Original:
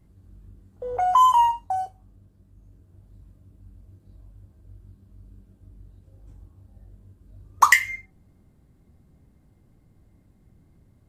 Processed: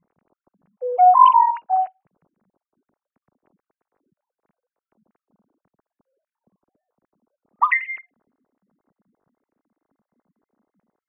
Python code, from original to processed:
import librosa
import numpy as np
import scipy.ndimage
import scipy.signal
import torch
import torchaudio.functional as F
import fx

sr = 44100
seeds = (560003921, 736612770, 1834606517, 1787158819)

y = fx.sine_speech(x, sr)
y = fx.env_lowpass(y, sr, base_hz=1500.0, full_db=-19.0)
y = y * 10.0 ** (4.0 / 20.0)